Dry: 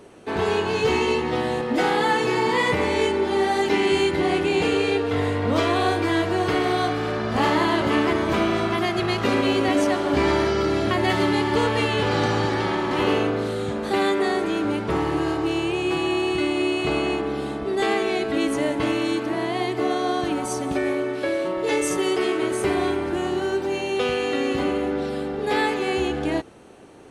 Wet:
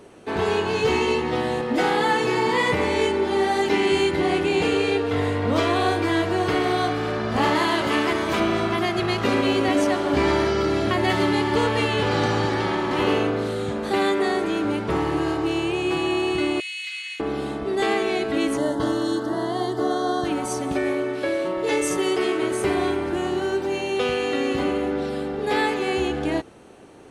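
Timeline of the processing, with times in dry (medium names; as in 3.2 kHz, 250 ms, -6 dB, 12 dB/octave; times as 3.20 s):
7.55–8.40 s: tilt EQ +1.5 dB/octave
16.60–17.20 s: Chebyshev high-pass 2 kHz, order 4
18.57–20.25 s: Butterworth band-stop 2.4 kHz, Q 1.6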